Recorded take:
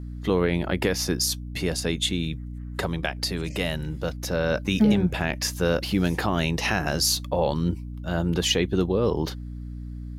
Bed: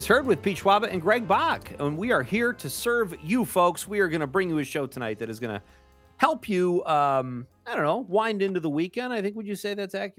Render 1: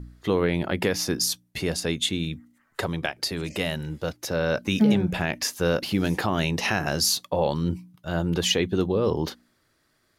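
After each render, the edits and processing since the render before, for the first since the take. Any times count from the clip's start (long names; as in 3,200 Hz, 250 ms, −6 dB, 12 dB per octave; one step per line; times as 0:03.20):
hum removal 60 Hz, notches 5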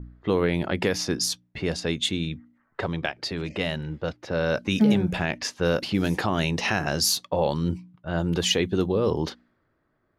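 low-pass that shuts in the quiet parts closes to 1,200 Hz, open at −19 dBFS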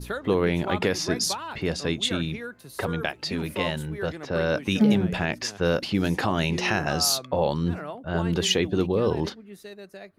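mix in bed −12 dB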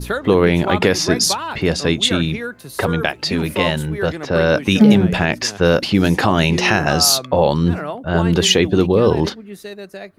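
level +9.5 dB
brickwall limiter −2 dBFS, peak gain reduction 1.5 dB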